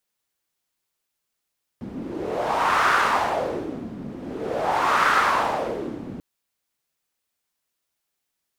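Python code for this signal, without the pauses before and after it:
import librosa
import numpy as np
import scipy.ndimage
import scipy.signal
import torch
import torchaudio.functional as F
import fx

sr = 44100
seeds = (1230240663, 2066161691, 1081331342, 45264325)

y = fx.wind(sr, seeds[0], length_s=4.39, low_hz=230.0, high_hz=1300.0, q=2.9, gusts=2, swing_db=15.0)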